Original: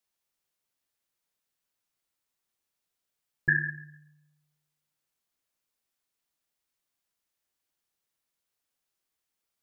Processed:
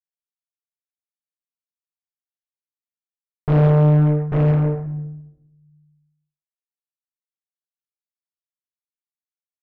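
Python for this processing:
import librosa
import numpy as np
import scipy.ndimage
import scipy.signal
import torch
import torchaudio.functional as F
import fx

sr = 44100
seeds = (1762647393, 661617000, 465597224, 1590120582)

y = fx.env_lowpass_down(x, sr, base_hz=800.0, full_db=-39.0)
y = fx.tilt_shelf(y, sr, db=7.0, hz=750.0)
y = y + 10.0 ** (-13.0 / 20.0) * np.pad(y, (int(843 * sr / 1000.0), 0))[:len(y)]
y = fx.fuzz(y, sr, gain_db=56.0, gate_db=-57.0)
y = scipy.signal.sosfilt(scipy.signal.butter(2, 1200.0, 'lowpass', fs=sr, output='sos'), y)
y = fx.peak_eq(y, sr, hz=570.0, db=4.5, octaves=0.68)
y = fx.room_shoebox(y, sr, seeds[0], volume_m3=310.0, walls='mixed', distance_m=1.1)
y = fx.doppler_dist(y, sr, depth_ms=0.56)
y = y * 10.0 ** (-6.0 / 20.0)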